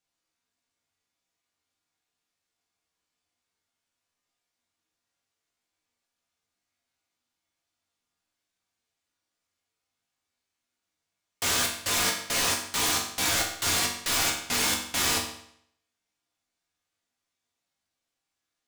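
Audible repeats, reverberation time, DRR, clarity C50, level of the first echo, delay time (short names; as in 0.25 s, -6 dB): none, 0.70 s, -1.5 dB, 6.0 dB, none, none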